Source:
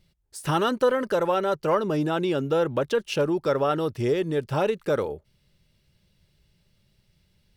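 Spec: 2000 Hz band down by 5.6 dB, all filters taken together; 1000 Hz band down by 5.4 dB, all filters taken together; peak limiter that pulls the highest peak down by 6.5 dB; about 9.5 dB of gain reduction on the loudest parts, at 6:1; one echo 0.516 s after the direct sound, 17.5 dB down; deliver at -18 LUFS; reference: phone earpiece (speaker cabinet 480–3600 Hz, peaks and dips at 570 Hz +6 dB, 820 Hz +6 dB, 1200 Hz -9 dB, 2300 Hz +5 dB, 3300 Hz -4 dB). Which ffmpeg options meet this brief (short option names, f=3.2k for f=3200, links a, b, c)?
-af "equalizer=f=1k:t=o:g=-8.5,equalizer=f=2k:t=o:g=-4,acompressor=threshold=-30dB:ratio=6,alimiter=level_in=3.5dB:limit=-24dB:level=0:latency=1,volume=-3.5dB,highpass=480,equalizer=f=570:t=q:w=4:g=6,equalizer=f=820:t=q:w=4:g=6,equalizer=f=1.2k:t=q:w=4:g=-9,equalizer=f=2.3k:t=q:w=4:g=5,equalizer=f=3.3k:t=q:w=4:g=-4,lowpass=f=3.6k:w=0.5412,lowpass=f=3.6k:w=1.3066,aecho=1:1:516:0.133,volume=19.5dB"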